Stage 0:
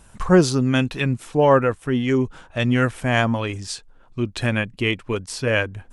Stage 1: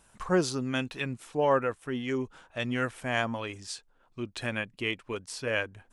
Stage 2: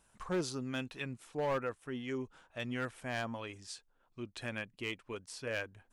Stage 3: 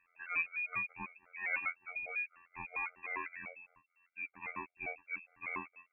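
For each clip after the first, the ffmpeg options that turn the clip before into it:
-af "lowshelf=f=210:g=-10,volume=-8dB"
-af "asoftclip=type=hard:threshold=-21dB,volume=-7.5dB"
-af "afftfilt=real='hypot(re,im)*cos(PI*b)':imag='0':win_size=2048:overlap=0.75,lowpass=f=2.3k:t=q:w=0.5098,lowpass=f=2.3k:t=q:w=0.6013,lowpass=f=2.3k:t=q:w=0.9,lowpass=f=2.3k:t=q:w=2.563,afreqshift=-2700,afftfilt=real='re*gt(sin(2*PI*5*pts/sr)*(1-2*mod(floor(b*sr/1024/390),2)),0)':imag='im*gt(sin(2*PI*5*pts/sr)*(1-2*mod(floor(b*sr/1024/390),2)),0)':win_size=1024:overlap=0.75,volume=5dB"

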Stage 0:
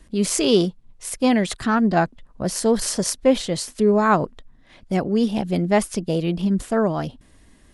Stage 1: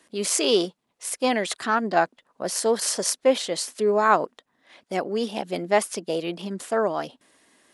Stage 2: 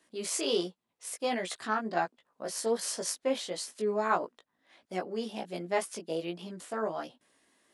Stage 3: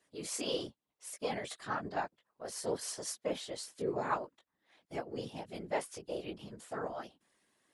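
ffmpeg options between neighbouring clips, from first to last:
-af "highpass=410"
-af "flanger=delay=16.5:depth=2.2:speed=1.4,volume=-6dB"
-af "afftfilt=real='hypot(re,im)*cos(2*PI*random(0))':imag='hypot(re,im)*sin(2*PI*random(1))':win_size=512:overlap=0.75"

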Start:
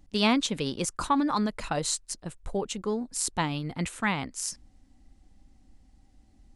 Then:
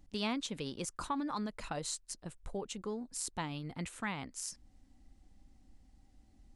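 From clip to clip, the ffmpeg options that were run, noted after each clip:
-af "acompressor=threshold=-42dB:ratio=1.5,volume=-4dB"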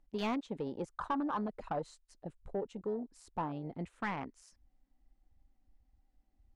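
-filter_complex "[0:a]afwtdn=0.00891,asplit=2[a][b];[b]highpass=f=720:p=1,volume=16dB,asoftclip=type=tanh:threshold=-23dB[c];[a][c]amix=inputs=2:normalize=0,lowpass=f=1.2k:p=1,volume=-6dB"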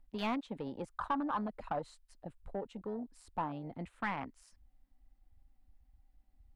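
-filter_complex "[0:a]equalizer=f=160:t=o:w=0.67:g=-4,equalizer=f=400:t=o:w=0.67:g=-7,equalizer=f=6.3k:t=o:w=0.67:g=-7,acrossover=split=120|2800[a][b][c];[a]acompressor=mode=upward:threshold=-57dB:ratio=2.5[d];[d][b][c]amix=inputs=3:normalize=0,volume=1.5dB"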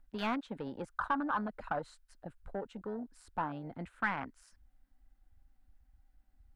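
-af "equalizer=f=1.5k:t=o:w=0.43:g=9.5"

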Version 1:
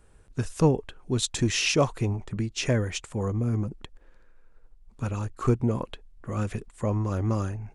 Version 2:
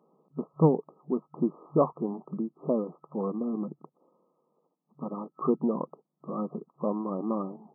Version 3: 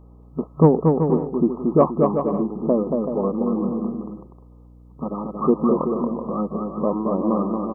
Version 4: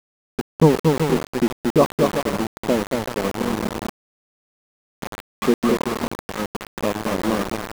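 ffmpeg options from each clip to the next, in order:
-af "afftfilt=real='re*between(b*sr/4096,140,1300)':imag='im*between(b*sr/4096,140,1300)':win_size=4096:overlap=0.75"
-af "acontrast=30,aecho=1:1:230|379.5|476.7|539.8|580.9:0.631|0.398|0.251|0.158|0.1,aeval=exprs='val(0)+0.00398*(sin(2*PI*60*n/s)+sin(2*PI*2*60*n/s)/2+sin(2*PI*3*60*n/s)/3+sin(2*PI*4*60*n/s)/4+sin(2*PI*5*60*n/s)/5)':c=same,volume=2.5dB"
-af "aeval=exprs='val(0)*gte(abs(val(0)),0.1)':c=same"

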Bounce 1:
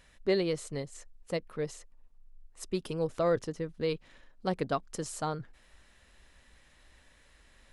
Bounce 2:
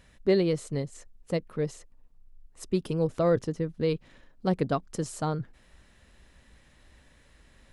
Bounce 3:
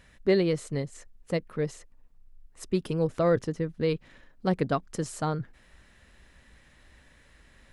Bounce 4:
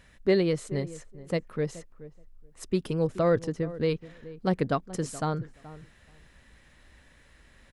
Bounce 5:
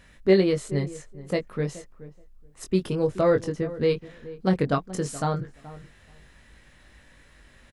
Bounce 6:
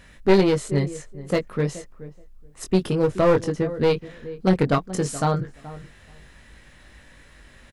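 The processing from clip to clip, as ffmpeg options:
-af "equalizer=f=140:w=0.35:g=8"
-af "equalizer=f=1.8k:w=1.3:g=4"
-filter_complex "[0:a]asplit=2[a][b];[b]adelay=426,lowpass=f=1.1k:p=1,volume=-16dB,asplit=2[c][d];[d]adelay=426,lowpass=f=1.1k:p=1,volume=0.16[e];[a][c][e]amix=inputs=3:normalize=0"
-filter_complex "[0:a]asplit=2[a][b];[b]adelay=21,volume=-5dB[c];[a][c]amix=inputs=2:normalize=0,volume=2dB"
-af "aeval=exprs='clip(val(0),-1,0.075)':c=same,volume=4.5dB"

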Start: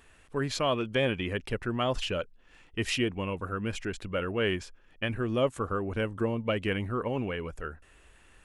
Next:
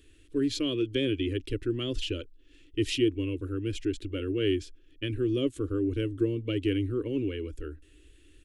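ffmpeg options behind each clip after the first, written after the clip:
-af "firequalizer=gain_entry='entry(110,0);entry(190,-26);entry(290,9);entry(750,-30);entry(1400,-16);entry(3300,-1);entry(5400,-5)':delay=0.05:min_phase=1,volume=3dB"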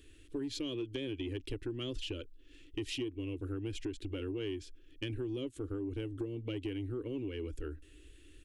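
-af "acompressor=threshold=-34dB:ratio=8,asoftclip=type=tanh:threshold=-26.5dB"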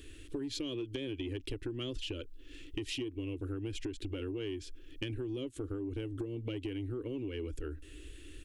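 -af "acompressor=threshold=-45dB:ratio=3,volume=7.5dB"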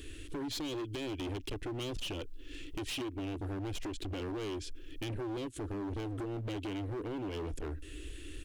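-af "asoftclip=type=hard:threshold=-40dB,volume=4.5dB"

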